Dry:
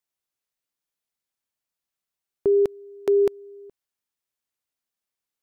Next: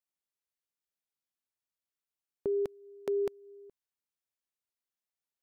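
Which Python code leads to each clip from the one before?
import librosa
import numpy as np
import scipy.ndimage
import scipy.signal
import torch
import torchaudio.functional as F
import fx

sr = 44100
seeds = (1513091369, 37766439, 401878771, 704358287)

y = fx.dynamic_eq(x, sr, hz=350.0, q=2.4, threshold_db=-34.0, ratio=4.0, max_db=-5)
y = F.gain(torch.from_numpy(y), -8.5).numpy()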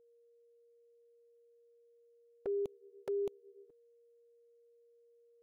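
y = fx.env_flanger(x, sr, rest_ms=12.0, full_db=-30.5)
y = y + 10.0 ** (-60.0 / 20.0) * np.sin(2.0 * np.pi * 470.0 * np.arange(len(y)) / sr)
y = F.gain(torch.from_numpy(y), -4.0).numpy()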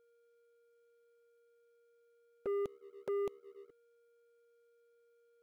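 y = fx.leveller(x, sr, passes=2)
y = F.gain(torch.from_numpy(y), -3.5).numpy()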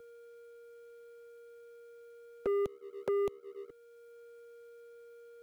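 y = fx.band_squash(x, sr, depth_pct=40)
y = F.gain(torch.from_numpy(y), 9.0).numpy()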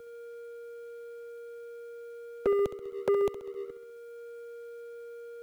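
y = fx.echo_feedback(x, sr, ms=66, feedback_pct=57, wet_db=-12.0)
y = F.gain(torch.from_numpy(y), 6.0).numpy()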